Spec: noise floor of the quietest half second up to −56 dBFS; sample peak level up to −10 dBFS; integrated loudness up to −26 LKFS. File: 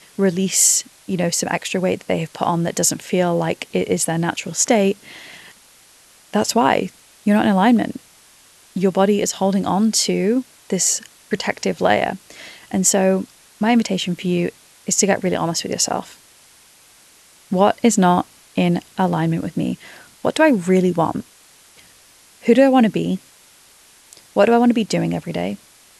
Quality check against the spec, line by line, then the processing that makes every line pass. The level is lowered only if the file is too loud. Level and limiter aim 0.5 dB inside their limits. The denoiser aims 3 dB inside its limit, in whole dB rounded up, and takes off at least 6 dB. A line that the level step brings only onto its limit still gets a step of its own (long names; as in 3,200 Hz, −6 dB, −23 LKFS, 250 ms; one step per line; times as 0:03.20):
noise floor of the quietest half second −50 dBFS: out of spec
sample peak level −2.5 dBFS: out of spec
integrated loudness −18.5 LKFS: out of spec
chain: level −8 dB